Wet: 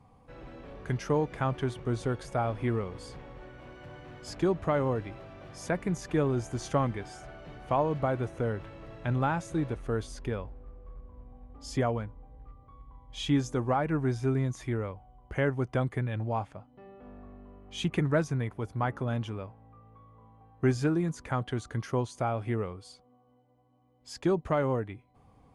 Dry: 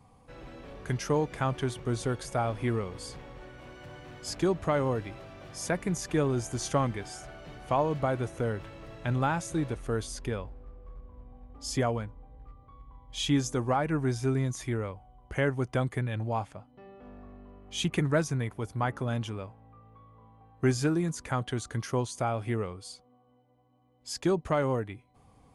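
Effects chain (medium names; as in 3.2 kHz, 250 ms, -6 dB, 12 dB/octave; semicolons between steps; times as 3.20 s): treble shelf 4.3 kHz -11 dB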